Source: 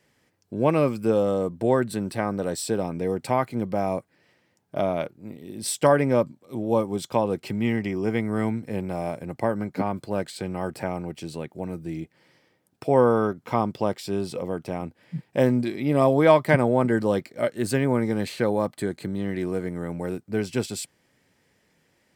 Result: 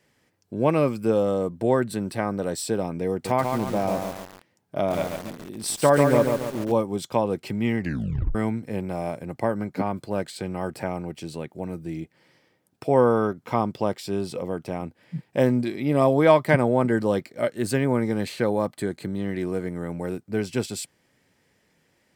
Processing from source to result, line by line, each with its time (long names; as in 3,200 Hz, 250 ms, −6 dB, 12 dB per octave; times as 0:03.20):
0:03.11–0:06.72: feedback echo at a low word length 140 ms, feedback 55%, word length 6 bits, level −4 dB
0:07.79: tape stop 0.56 s